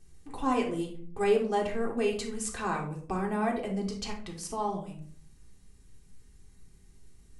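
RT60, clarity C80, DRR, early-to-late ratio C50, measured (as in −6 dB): 0.55 s, 13.0 dB, −1.5 dB, 7.5 dB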